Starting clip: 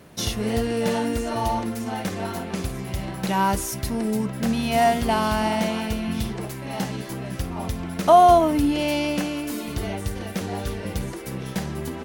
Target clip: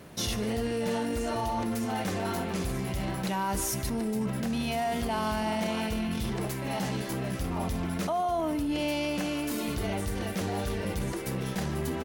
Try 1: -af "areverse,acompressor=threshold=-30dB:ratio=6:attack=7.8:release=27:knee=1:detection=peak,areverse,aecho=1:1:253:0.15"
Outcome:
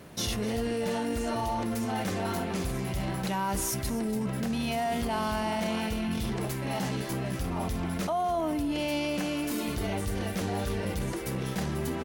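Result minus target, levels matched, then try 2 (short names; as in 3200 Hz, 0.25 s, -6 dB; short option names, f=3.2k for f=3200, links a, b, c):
echo 0.105 s late
-af "areverse,acompressor=threshold=-30dB:ratio=6:attack=7.8:release=27:knee=1:detection=peak,areverse,aecho=1:1:148:0.15"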